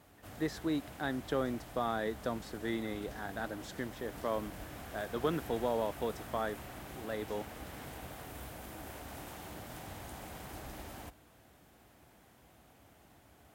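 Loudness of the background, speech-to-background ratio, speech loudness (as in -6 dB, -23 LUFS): -47.5 LUFS, 10.0 dB, -37.5 LUFS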